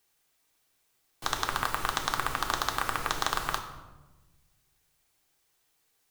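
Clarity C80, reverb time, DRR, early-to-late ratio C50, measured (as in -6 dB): 10.5 dB, 1.1 s, 3.0 dB, 9.0 dB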